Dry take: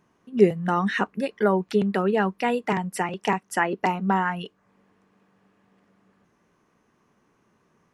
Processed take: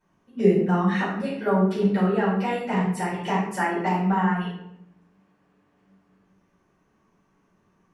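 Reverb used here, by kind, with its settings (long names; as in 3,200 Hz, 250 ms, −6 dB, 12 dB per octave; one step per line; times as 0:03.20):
rectangular room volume 170 cubic metres, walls mixed, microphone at 4.8 metres
level −15.5 dB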